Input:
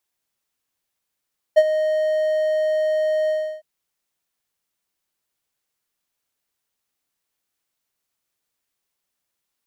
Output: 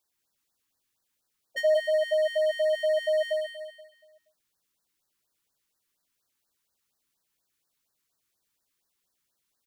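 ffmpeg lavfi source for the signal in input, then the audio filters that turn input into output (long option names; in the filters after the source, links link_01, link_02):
-f lavfi -i "aevalsrc='0.596*(1-4*abs(mod(621*t+0.25,1)-0.5))':duration=2.059:sample_rate=44100,afade=type=in:duration=0.019,afade=type=out:start_time=0.019:duration=0.048:silence=0.282,afade=type=out:start_time=1.73:duration=0.329"
-filter_complex "[0:a]asplit=2[link_01][link_02];[link_02]aecho=0:1:181|362|543|724:0.473|0.18|0.0683|0.026[link_03];[link_01][link_03]amix=inputs=2:normalize=0,afftfilt=real='re*(1-between(b*sr/1024,550*pow(2800/550,0.5+0.5*sin(2*PI*4.2*pts/sr))/1.41,550*pow(2800/550,0.5+0.5*sin(2*PI*4.2*pts/sr))*1.41))':imag='im*(1-between(b*sr/1024,550*pow(2800/550,0.5+0.5*sin(2*PI*4.2*pts/sr))/1.41,550*pow(2800/550,0.5+0.5*sin(2*PI*4.2*pts/sr))*1.41))':win_size=1024:overlap=0.75"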